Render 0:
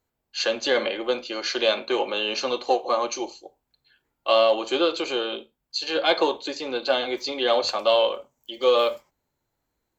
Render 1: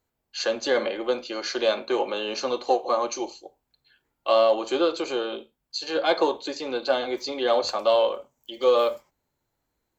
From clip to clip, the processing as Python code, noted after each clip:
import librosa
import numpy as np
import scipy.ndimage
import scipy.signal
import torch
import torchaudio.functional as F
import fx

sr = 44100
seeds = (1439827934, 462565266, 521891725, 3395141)

y = fx.dynamic_eq(x, sr, hz=2900.0, q=1.2, threshold_db=-39.0, ratio=4.0, max_db=-7)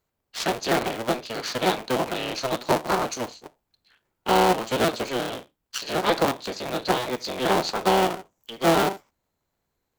y = fx.cycle_switch(x, sr, every=3, mode='inverted')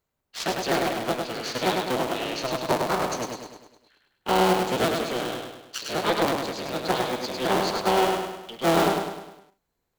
y = fx.echo_feedback(x, sr, ms=102, feedback_pct=50, wet_db=-4)
y = y * librosa.db_to_amplitude(-2.5)